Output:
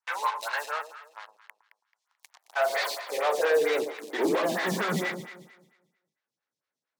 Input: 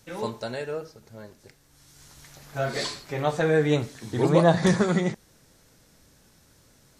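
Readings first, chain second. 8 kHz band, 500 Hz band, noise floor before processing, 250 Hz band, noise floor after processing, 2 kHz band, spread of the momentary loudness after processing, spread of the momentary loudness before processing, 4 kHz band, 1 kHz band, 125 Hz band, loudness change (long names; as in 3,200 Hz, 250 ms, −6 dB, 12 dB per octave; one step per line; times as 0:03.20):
−0.5 dB, −2.5 dB, −59 dBFS, −9.0 dB, below −85 dBFS, +2.5 dB, 18 LU, 14 LU, −0.5 dB, +1.0 dB, −15.5 dB, −3.5 dB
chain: low-pass filter 2,200 Hz 12 dB per octave
first difference
in parallel at −4 dB: fuzz pedal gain 56 dB, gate −60 dBFS
on the sum: high-pass filter sweep 970 Hz → 110 Hz, 0:02.14–0:05.80
on a send: delay that swaps between a low-pass and a high-pass 109 ms, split 1,100 Hz, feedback 53%, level −7.5 dB
on the sum: phaser with staggered stages 4.4 Hz
level −8 dB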